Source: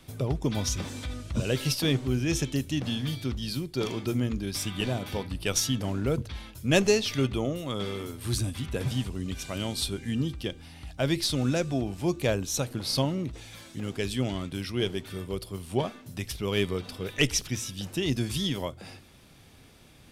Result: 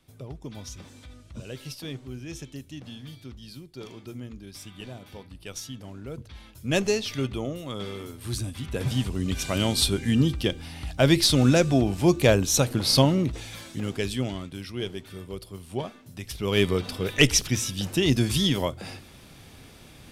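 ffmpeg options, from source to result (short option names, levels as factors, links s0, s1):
-af "volume=7.08,afade=t=in:st=6.09:d=0.65:silence=0.354813,afade=t=in:st=8.55:d=0.96:silence=0.334965,afade=t=out:st=13.18:d=1.32:silence=0.281838,afade=t=in:st=16.23:d=0.45:silence=0.334965"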